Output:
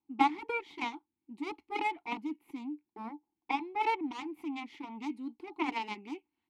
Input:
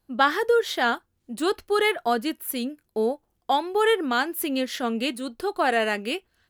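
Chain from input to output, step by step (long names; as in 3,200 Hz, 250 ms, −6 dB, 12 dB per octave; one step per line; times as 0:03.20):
harmonic generator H 2 −18 dB, 3 −20 dB, 7 −16 dB, 8 −29 dB, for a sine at −6.5 dBFS
formant filter u
level +8 dB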